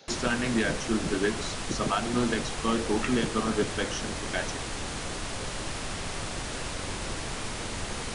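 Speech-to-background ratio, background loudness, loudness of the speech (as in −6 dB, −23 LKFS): 4.0 dB, −34.0 LKFS, −30.0 LKFS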